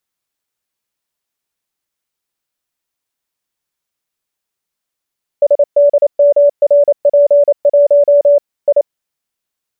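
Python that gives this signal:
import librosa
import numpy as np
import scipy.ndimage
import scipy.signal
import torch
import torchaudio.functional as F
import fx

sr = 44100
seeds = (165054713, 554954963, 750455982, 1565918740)

y = fx.morse(sr, text='SDMRP1 I', wpm=28, hz=576.0, level_db=-4.5)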